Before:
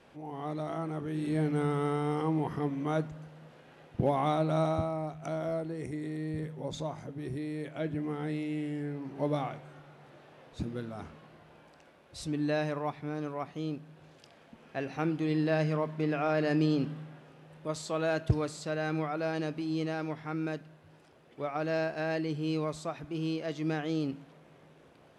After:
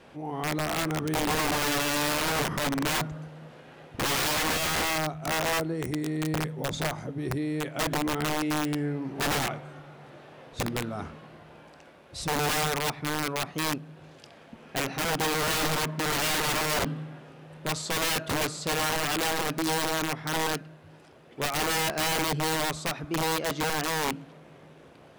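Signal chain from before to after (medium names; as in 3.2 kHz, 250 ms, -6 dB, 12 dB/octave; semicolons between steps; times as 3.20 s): dynamic bell 1.3 kHz, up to +3 dB, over -53 dBFS, Q 2.6; integer overflow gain 28.5 dB; trim +6.5 dB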